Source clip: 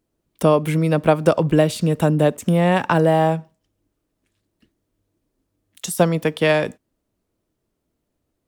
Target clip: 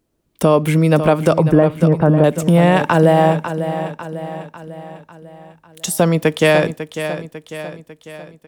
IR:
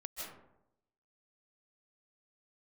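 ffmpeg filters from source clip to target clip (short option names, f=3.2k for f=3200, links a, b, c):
-filter_complex "[0:a]asettb=1/sr,asplit=3[a][b][c];[a]atrim=end=1.384[d];[b]atrim=start=1.38:end=2.24,asetpts=PTS-STARTPTS,afade=t=in:d=0.004:c=qsin,afade=t=out:st=0.856:d=0.004:c=qsin,lowpass=f=1.7k:w=0.5412,lowpass=f=1.7k:w=1.3066[e];[c]atrim=start=2.236[f];[d][e]acrossfade=d=0.004:c1=hsin:c2=qsin[g];[g][f]acrossfade=d=0.004:c1=qsin:c2=hsin,aecho=1:1:548|1096|1644|2192|2740:0.266|0.136|0.0692|0.0353|0.018,alimiter=level_in=6dB:limit=-1dB:release=50:level=0:latency=1,volume=-1dB"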